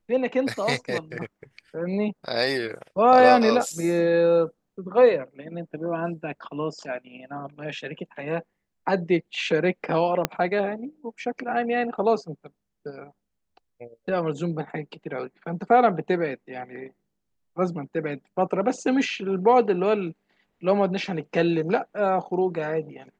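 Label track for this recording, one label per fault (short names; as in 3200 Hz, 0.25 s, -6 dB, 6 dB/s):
10.250000	10.250000	pop -6 dBFS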